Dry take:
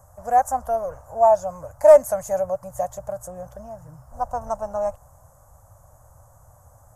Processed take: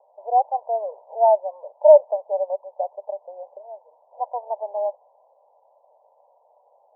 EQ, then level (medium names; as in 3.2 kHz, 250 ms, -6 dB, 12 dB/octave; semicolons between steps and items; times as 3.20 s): Chebyshev band-pass 390–980 Hz, order 5; 0.0 dB